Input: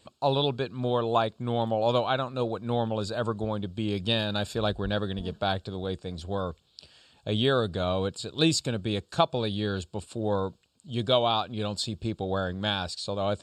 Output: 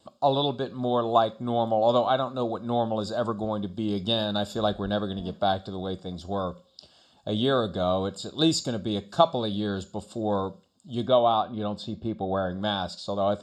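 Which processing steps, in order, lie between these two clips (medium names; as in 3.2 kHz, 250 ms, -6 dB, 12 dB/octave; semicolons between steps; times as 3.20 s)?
tone controls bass -10 dB, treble +8 dB, from 11.05 s treble -8 dB, from 12.49 s treble +4 dB; reverberation RT60 0.45 s, pre-delay 3 ms, DRR 15.5 dB; trim -7 dB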